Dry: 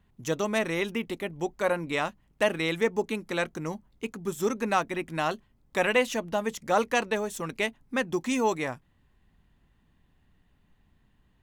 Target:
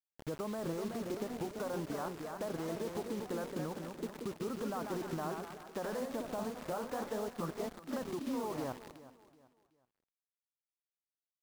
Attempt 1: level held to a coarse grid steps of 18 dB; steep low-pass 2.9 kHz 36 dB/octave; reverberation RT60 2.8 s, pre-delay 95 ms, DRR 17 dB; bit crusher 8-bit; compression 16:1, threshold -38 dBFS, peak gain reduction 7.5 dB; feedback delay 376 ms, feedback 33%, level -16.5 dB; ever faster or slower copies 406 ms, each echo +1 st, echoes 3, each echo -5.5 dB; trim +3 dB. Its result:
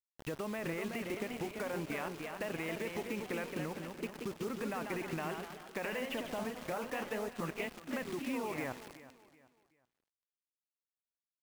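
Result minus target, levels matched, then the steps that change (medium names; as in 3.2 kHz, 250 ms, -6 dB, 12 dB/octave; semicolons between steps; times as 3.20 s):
4 kHz band +3.0 dB
change: steep low-pass 1.4 kHz 36 dB/octave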